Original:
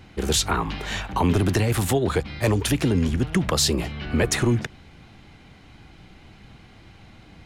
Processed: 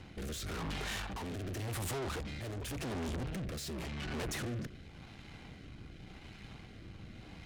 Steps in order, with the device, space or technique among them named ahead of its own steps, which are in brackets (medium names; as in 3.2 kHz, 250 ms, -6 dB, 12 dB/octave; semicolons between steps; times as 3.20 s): overdriven rotary cabinet (valve stage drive 38 dB, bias 0.6; rotary cabinet horn 0.9 Hz); trim +2 dB